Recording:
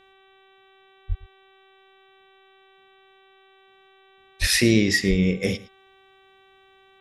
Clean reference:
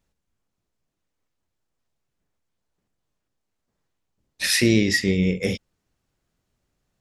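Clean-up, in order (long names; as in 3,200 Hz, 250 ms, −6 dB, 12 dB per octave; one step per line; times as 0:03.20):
hum removal 385.4 Hz, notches 10
high-pass at the plosives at 0:01.08/0:04.40/0:05.09
echo removal 112 ms −19.5 dB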